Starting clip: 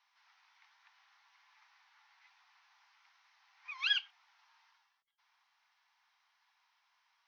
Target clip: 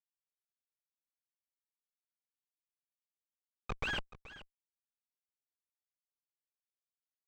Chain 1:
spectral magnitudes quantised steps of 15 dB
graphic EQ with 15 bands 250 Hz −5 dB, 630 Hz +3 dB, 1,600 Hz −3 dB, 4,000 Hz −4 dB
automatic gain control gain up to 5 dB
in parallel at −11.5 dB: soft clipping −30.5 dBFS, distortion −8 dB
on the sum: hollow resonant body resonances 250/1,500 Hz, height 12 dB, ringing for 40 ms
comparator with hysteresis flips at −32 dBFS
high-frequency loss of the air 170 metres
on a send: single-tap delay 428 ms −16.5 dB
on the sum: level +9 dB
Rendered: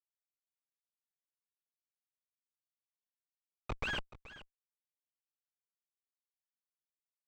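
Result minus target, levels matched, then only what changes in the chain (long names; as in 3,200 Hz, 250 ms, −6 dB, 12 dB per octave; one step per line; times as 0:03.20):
soft clipping: distortion +9 dB
change: soft clipping −21.5 dBFS, distortion −17 dB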